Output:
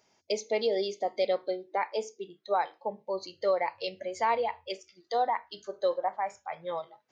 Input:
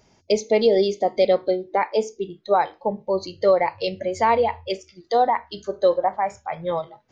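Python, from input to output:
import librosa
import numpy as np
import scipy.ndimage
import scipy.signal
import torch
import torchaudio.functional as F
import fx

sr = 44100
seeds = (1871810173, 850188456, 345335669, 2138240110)

y = fx.highpass(x, sr, hz=590.0, slope=6)
y = F.gain(torch.from_numpy(y), -6.5).numpy()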